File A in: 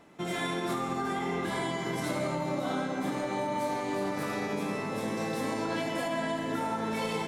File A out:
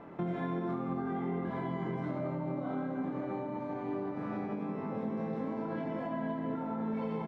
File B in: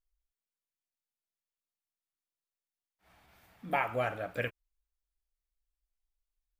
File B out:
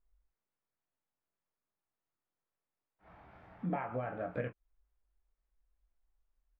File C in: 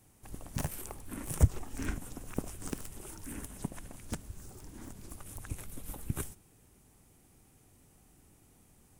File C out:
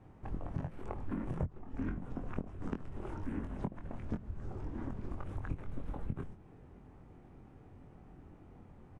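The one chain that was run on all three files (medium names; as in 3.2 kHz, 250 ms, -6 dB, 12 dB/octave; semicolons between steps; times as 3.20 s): low-pass 1.4 kHz 12 dB/octave; dynamic bell 190 Hz, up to +6 dB, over -48 dBFS, Q 1.2; compression 10:1, threshold -42 dBFS; doubling 23 ms -6 dB; trim +7.5 dB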